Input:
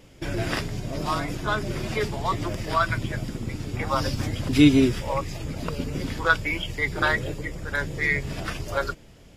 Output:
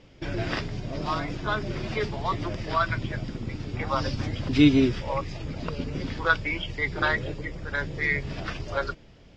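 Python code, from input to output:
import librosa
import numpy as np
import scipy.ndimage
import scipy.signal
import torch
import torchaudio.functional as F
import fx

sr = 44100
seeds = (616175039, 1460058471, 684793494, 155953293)

y = scipy.signal.sosfilt(scipy.signal.butter(4, 5500.0, 'lowpass', fs=sr, output='sos'), x)
y = y * librosa.db_to_amplitude(-2.0)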